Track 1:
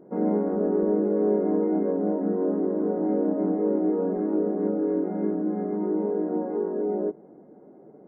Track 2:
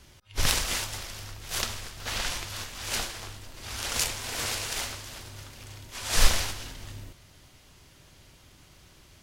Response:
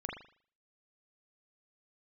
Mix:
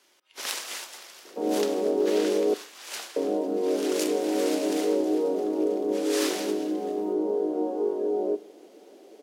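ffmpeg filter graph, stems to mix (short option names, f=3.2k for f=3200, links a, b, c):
-filter_complex "[0:a]lowpass=1k,adelay=1250,volume=1dB,asplit=3[a][b][c];[a]atrim=end=2.54,asetpts=PTS-STARTPTS,afade=t=out:st=2.536:d=0.004:c=hsin[d];[b]atrim=start=2.54:end=3.16,asetpts=PTS-STARTPTS,volume=0[e];[c]atrim=start=3.16,asetpts=PTS-STARTPTS,afade=t=in:d=0.004:c=hsin[f];[d][e][f]concat=n=3:v=0:a=1,asplit=2[g][h];[h]volume=-18dB[i];[1:a]volume=-6.5dB,asplit=2[j][k];[k]volume=-17.5dB[l];[2:a]atrim=start_sample=2205[m];[i][l]amix=inputs=2:normalize=0[n];[n][m]afir=irnorm=-1:irlink=0[o];[g][j][o]amix=inputs=3:normalize=0,highpass=f=320:w=0.5412,highpass=f=320:w=1.3066"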